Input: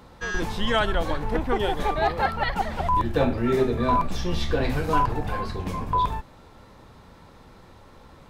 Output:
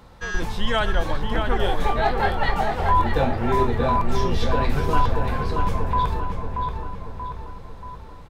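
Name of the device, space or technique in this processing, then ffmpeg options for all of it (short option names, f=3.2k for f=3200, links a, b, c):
low shelf boost with a cut just above: -filter_complex "[0:a]asettb=1/sr,asplit=3[a][b][c];[a]atrim=end=1.574[d];[b]atrim=start=1.57:end=3.2,asetpts=PTS-STARTPTS,afade=t=in:d=0.004:c=qsin,afade=t=out:st=1.626:d=0.004:c=qsin,asplit=2[e][f];[f]adelay=22,volume=-5.5dB[g];[e][g]amix=inputs=2:normalize=0,atrim=end_sample=71883[h];[c]atrim=start=3.196[i];[d][h]acrossfade=d=0.004:c1=hsin:c2=qsin[j];[j][i]acrossfade=d=0.004:c1=qsin:c2=hsin,lowshelf=f=60:g=6,equalizer=f=300:t=o:w=0.86:g=-3.5,asplit=2[k][l];[l]adelay=632,lowpass=f=3k:p=1,volume=-4.5dB,asplit=2[m][n];[n]adelay=632,lowpass=f=3k:p=1,volume=0.54,asplit=2[o][p];[p]adelay=632,lowpass=f=3k:p=1,volume=0.54,asplit=2[q][r];[r]adelay=632,lowpass=f=3k:p=1,volume=0.54,asplit=2[s][t];[t]adelay=632,lowpass=f=3k:p=1,volume=0.54,asplit=2[u][v];[v]adelay=632,lowpass=f=3k:p=1,volume=0.54,asplit=2[w][x];[x]adelay=632,lowpass=f=3k:p=1,volume=0.54[y];[k][m][o][q][s][u][w][y]amix=inputs=8:normalize=0"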